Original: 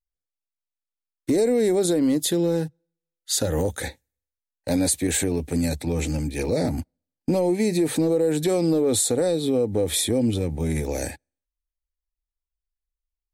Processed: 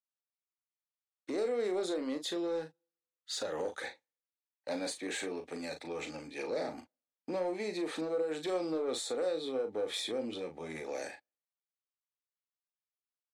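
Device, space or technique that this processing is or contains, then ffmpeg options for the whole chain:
intercom: -filter_complex "[0:a]highpass=470,lowpass=4.4k,equalizer=f=1.2k:t=o:w=0.3:g=6.5,asoftclip=type=tanh:threshold=-19dB,asplit=2[a][b];[b]adelay=38,volume=-8dB[c];[a][c]amix=inputs=2:normalize=0,volume=-7.5dB"

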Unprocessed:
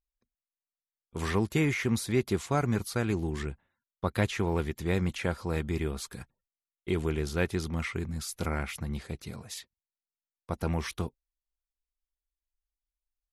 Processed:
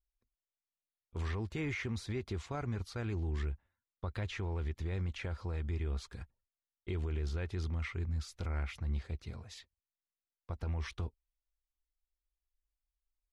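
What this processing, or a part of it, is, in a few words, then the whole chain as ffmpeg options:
car stereo with a boomy subwoofer: -af "lowpass=5.1k,lowshelf=f=110:t=q:w=1.5:g=8.5,alimiter=limit=-21.5dB:level=0:latency=1:release=49,volume=-6.5dB"

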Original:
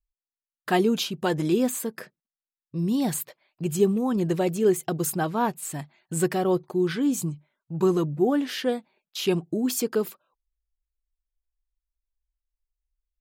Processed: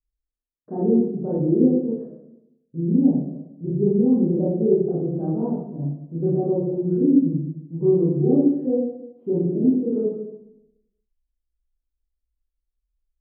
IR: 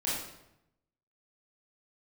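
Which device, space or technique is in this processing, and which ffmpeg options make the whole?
next room: -filter_complex "[0:a]lowpass=f=510:w=0.5412,lowpass=f=510:w=1.3066[a];[1:a]atrim=start_sample=2205[b];[a][b]afir=irnorm=-1:irlink=0,volume=-2dB"

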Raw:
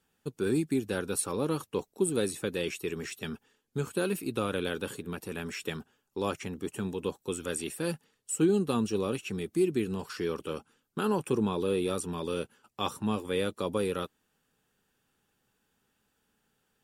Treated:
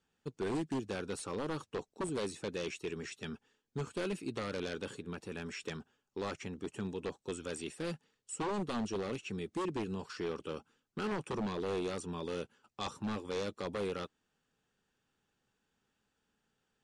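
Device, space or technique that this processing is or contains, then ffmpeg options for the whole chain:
synthesiser wavefolder: -af "aeval=exprs='0.0596*(abs(mod(val(0)/0.0596+3,4)-2)-1)':c=same,lowpass=f=7.7k:w=0.5412,lowpass=f=7.7k:w=1.3066,volume=-5dB"

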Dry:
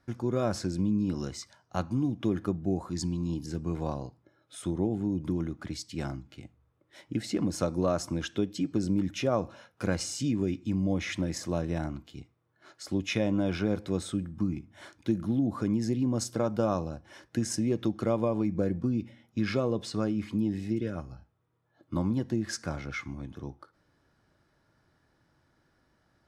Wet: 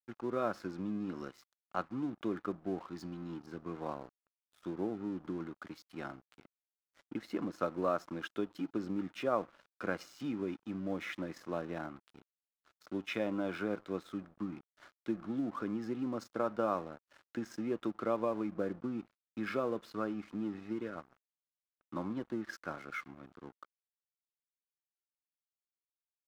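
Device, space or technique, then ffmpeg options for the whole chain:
pocket radio on a weak battery: -af "highpass=260,lowpass=3.2k,aeval=exprs='sgn(val(0))*max(abs(val(0))-0.00299,0)':c=same,equalizer=f=1.3k:t=o:w=0.55:g=7.5,volume=-4.5dB"

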